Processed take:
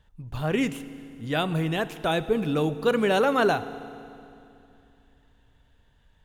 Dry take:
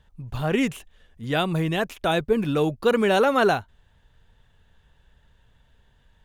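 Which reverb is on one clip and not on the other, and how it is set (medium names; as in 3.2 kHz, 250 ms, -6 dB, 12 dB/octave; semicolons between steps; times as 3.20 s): FDN reverb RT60 2.7 s, low-frequency decay 1.25×, high-frequency decay 0.9×, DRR 13 dB; trim -2.5 dB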